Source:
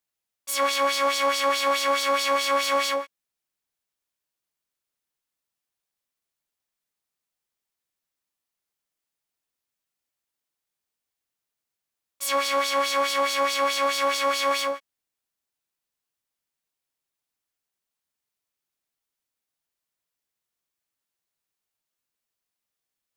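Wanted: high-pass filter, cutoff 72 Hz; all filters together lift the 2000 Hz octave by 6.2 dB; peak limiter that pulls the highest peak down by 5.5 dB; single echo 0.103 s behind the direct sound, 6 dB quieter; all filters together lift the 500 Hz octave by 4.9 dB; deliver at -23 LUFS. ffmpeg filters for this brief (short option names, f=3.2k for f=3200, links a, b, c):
-af "highpass=72,equalizer=f=500:t=o:g=5,equalizer=f=2k:t=o:g=7,alimiter=limit=-14dB:level=0:latency=1,aecho=1:1:103:0.501,volume=-2dB"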